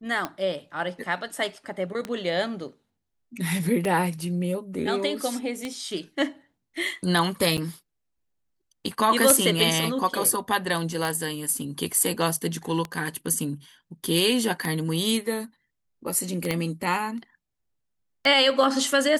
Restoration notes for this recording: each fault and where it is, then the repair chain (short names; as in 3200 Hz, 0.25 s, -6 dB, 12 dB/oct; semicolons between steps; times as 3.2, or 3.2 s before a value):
tick 33 1/3 rpm -14 dBFS
7.57–7.58 gap 7.8 ms
16.51 pop -12 dBFS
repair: de-click; interpolate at 7.57, 7.8 ms